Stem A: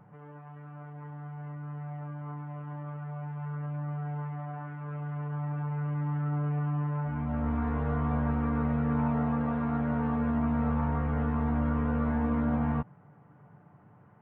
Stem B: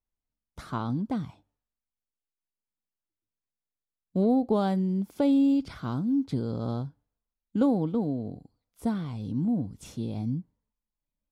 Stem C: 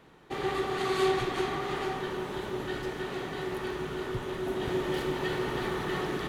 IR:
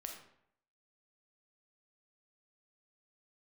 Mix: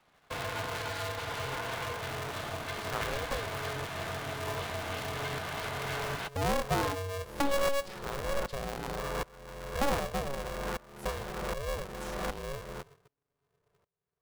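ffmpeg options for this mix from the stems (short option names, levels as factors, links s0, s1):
-filter_complex "[0:a]dynaudnorm=f=470:g=7:m=2,aeval=exprs='val(0)*pow(10,-26*if(lt(mod(-1.3*n/s,1),2*abs(-1.3)/1000),1-mod(-1.3*n/s,1)/(2*abs(-1.3)/1000),(mod(-1.3*n/s,1)-2*abs(-1.3)/1000)/(1-2*abs(-1.3)/1000))/20)':c=same,volume=0.596[s0];[1:a]adelay=2200,volume=0.596,asplit=2[s1][s2];[s2]volume=0.447[s3];[2:a]highpass=f=430:w=0.5412,highpass=f=430:w=1.3066,alimiter=level_in=1.78:limit=0.0631:level=0:latency=1:release=428,volume=0.562,volume=1.33[s4];[3:a]atrim=start_sample=2205[s5];[s3][s5]afir=irnorm=-1:irlink=0[s6];[s0][s1][s4][s6]amix=inputs=4:normalize=0,acrossover=split=280|3000[s7][s8][s9];[s7]acompressor=threshold=0.00891:ratio=6[s10];[s10][s8][s9]amix=inputs=3:normalize=0,agate=range=0.282:threshold=0.00178:ratio=16:detection=peak,aeval=exprs='val(0)*sgn(sin(2*PI*280*n/s))':c=same"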